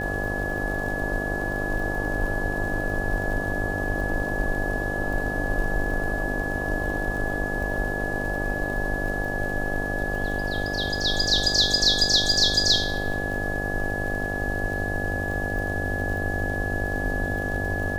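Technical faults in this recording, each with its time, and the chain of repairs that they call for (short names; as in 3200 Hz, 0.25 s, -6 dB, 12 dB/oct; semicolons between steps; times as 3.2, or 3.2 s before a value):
buzz 50 Hz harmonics 16 -31 dBFS
crackle 51/s -33 dBFS
tone 1700 Hz -29 dBFS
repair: de-click; de-hum 50 Hz, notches 16; notch 1700 Hz, Q 30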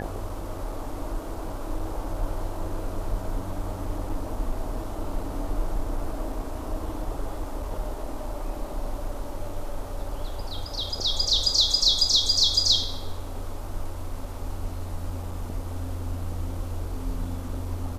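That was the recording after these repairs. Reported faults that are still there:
none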